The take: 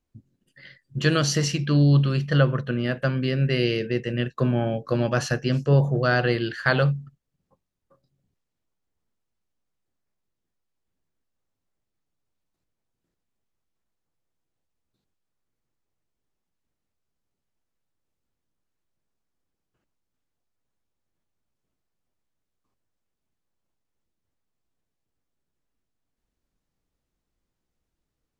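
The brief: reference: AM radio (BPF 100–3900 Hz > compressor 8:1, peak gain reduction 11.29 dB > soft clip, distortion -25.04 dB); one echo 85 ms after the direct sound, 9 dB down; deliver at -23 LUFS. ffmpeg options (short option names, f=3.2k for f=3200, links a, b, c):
-af "highpass=100,lowpass=3.9k,aecho=1:1:85:0.355,acompressor=threshold=-24dB:ratio=8,asoftclip=threshold=-16dB,volume=6.5dB"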